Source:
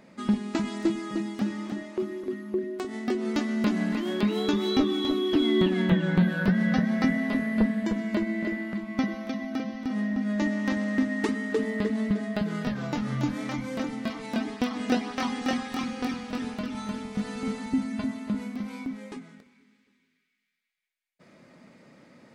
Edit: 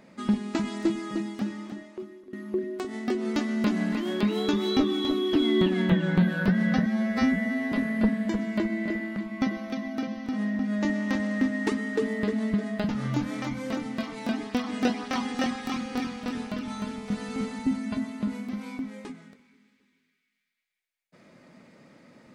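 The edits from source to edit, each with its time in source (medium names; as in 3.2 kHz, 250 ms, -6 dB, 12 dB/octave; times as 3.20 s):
1.14–2.33 s: fade out, to -17.5 dB
6.86–7.29 s: stretch 2×
12.46–12.96 s: delete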